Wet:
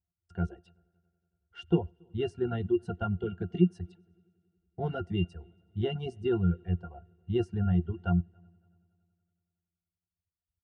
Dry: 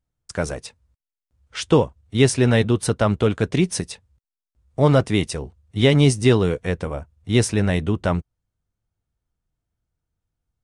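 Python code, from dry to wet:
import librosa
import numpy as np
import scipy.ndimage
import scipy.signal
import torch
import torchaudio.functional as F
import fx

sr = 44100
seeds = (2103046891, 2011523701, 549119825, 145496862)

y = fx.octave_resonator(x, sr, note='F', decay_s=0.13)
y = fx.echo_heads(y, sr, ms=93, heads='first and third', feedback_pct=56, wet_db=-22.5)
y = fx.dereverb_blind(y, sr, rt60_s=2.0)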